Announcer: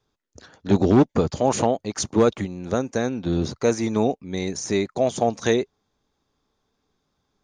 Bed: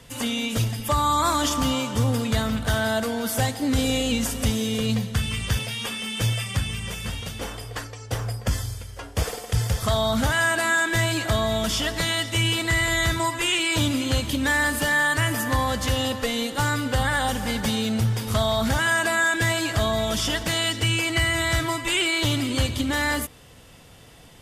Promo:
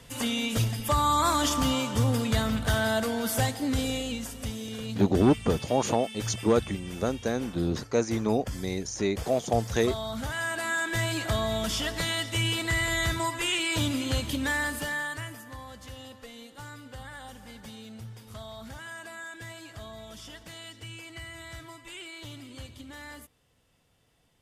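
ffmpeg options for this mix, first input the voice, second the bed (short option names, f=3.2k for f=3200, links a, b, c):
-filter_complex "[0:a]adelay=4300,volume=-5dB[a];[1:a]volume=4dB,afade=t=out:st=3.36:d=0.89:silence=0.354813,afade=t=in:st=10.23:d=1:silence=0.473151,afade=t=out:st=14.34:d=1.08:silence=0.177828[b];[a][b]amix=inputs=2:normalize=0"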